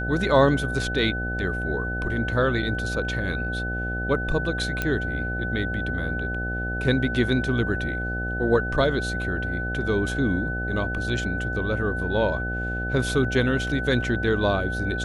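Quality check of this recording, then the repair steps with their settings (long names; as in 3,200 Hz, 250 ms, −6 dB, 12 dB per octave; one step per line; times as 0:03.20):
mains buzz 60 Hz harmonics 13 −30 dBFS
whistle 1,500 Hz −29 dBFS
0:04.82: click −11 dBFS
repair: click removal
hum removal 60 Hz, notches 13
notch filter 1,500 Hz, Q 30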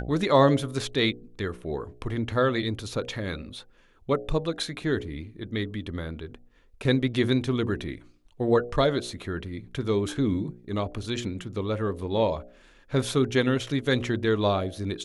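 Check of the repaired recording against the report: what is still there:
0:04.82: click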